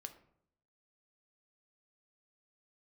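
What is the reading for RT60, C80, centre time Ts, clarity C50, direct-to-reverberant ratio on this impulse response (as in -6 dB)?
0.70 s, 16.0 dB, 8 ms, 12.5 dB, 7.0 dB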